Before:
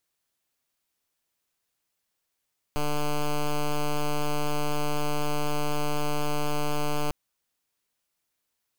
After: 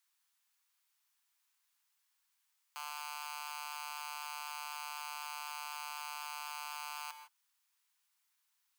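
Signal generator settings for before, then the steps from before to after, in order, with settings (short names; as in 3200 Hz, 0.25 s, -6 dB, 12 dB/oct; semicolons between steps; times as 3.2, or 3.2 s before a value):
pulse 148 Hz, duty 8% -25 dBFS 4.35 s
steep high-pass 850 Hz 48 dB/oct; limiter -30 dBFS; non-linear reverb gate 0.18 s rising, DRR 9 dB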